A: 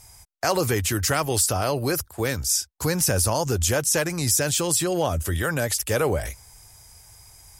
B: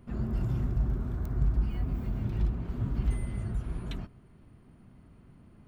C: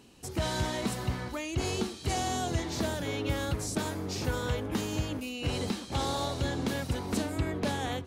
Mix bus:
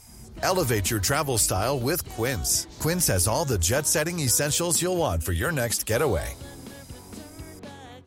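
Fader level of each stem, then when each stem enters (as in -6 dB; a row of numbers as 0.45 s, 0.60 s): -1.0 dB, -15.0 dB, -10.5 dB; 0.00 s, 0.00 s, 0.00 s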